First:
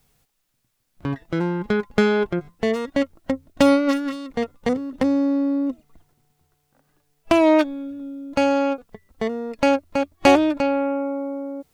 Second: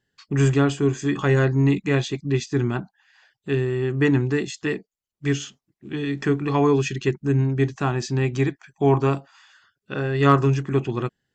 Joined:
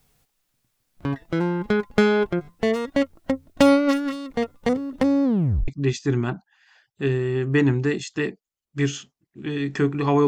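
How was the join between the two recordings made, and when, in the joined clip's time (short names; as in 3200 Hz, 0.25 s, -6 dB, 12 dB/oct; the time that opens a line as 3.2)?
first
5.24 tape stop 0.44 s
5.68 switch to second from 2.15 s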